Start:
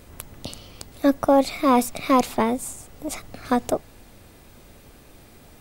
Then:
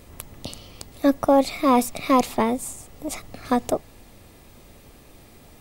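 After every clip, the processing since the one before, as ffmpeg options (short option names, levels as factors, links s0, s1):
-af "bandreject=f=1500:w=10"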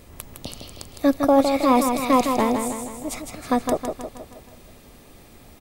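-af "aecho=1:1:159|318|477|636|795|954:0.501|0.261|0.136|0.0705|0.0366|0.0191"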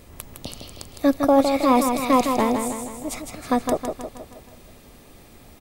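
-af anull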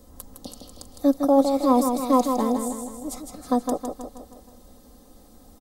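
-filter_complex "[0:a]acrossover=split=130|3300[s0][s1][s2];[s0]alimiter=level_in=4.47:limit=0.0631:level=0:latency=1:release=401,volume=0.224[s3];[s1]lowpass=1200[s4];[s3][s4][s2]amix=inputs=3:normalize=0,aecho=1:1:3.9:0.69,volume=0.596"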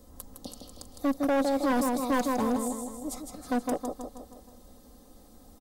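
-af "asoftclip=type=hard:threshold=0.112,volume=0.708"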